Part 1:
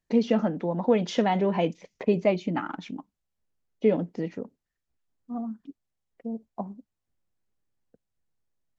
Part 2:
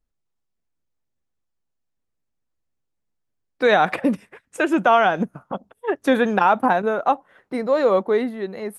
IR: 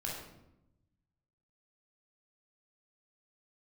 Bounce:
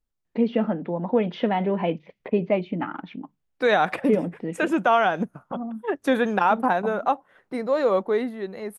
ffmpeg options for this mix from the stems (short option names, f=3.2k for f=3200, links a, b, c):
-filter_complex "[0:a]lowpass=f=3.3k:w=0.5412,lowpass=f=3.3k:w=1.3066,bandreject=f=50:t=h:w=6,bandreject=f=100:t=h:w=6,bandreject=f=150:t=h:w=6,adelay=250,volume=0.5dB[a];[1:a]volume=-3.5dB[b];[a][b]amix=inputs=2:normalize=0"